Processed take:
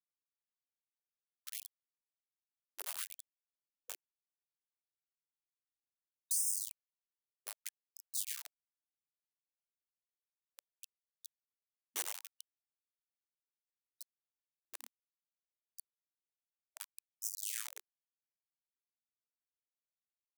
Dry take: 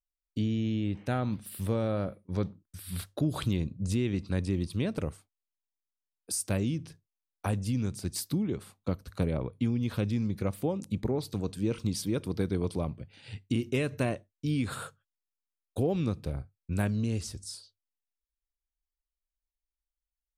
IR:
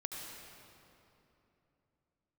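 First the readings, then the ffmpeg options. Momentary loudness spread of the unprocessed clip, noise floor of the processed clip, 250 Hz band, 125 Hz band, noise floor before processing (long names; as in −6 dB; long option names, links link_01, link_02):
9 LU, below −85 dBFS, below −40 dB, below −40 dB, below −85 dBFS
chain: -filter_complex "[0:a]highpass=93[link_01];[1:a]atrim=start_sample=2205[link_02];[link_01][link_02]afir=irnorm=-1:irlink=0,afftfilt=real='re*(1-between(b*sr/4096,200,5800))':imag='im*(1-between(b*sr/4096,200,5800))':win_size=4096:overlap=0.75,acompressor=threshold=-38dB:ratio=8,lowshelf=frequency=320:width_type=q:width=3:gain=-11,flanger=delay=2.2:depth=1.8:regen=37:speed=0.17:shape=triangular,aecho=1:1:10|28:0.237|0.282,asoftclip=type=tanh:threshold=-36.5dB,acrusher=bits=5:dc=4:mix=0:aa=0.000001,afftfilt=real='re*gte(b*sr/1024,220*pow(5100/220,0.5+0.5*sin(2*PI*0.65*pts/sr)))':imag='im*gte(b*sr/1024,220*pow(5100/220,0.5+0.5*sin(2*PI*0.65*pts/sr)))':win_size=1024:overlap=0.75,volume=17dB"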